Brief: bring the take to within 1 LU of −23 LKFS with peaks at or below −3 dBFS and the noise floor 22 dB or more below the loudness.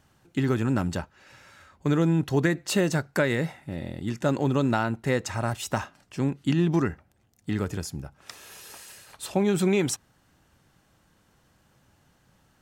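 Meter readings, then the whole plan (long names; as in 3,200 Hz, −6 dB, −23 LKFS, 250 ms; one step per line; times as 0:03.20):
integrated loudness −26.5 LKFS; sample peak −11.5 dBFS; target loudness −23.0 LKFS
→ level +3.5 dB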